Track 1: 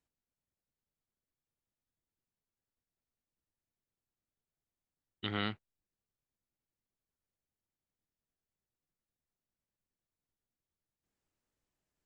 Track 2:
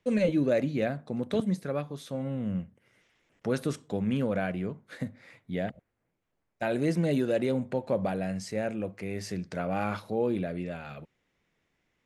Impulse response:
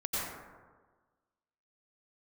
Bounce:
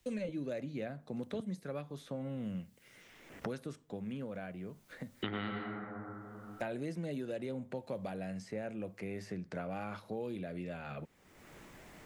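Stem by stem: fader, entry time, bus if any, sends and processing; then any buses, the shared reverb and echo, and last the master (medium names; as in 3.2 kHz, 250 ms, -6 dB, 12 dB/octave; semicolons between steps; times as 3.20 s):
-1.5 dB, 0.00 s, send -4 dB, none
-11.5 dB, 0.00 s, no send, auto duck -21 dB, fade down 1.95 s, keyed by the first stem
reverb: on, RT60 1.4 s, pre-delay 82 ms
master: three bands compressed up and down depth 100%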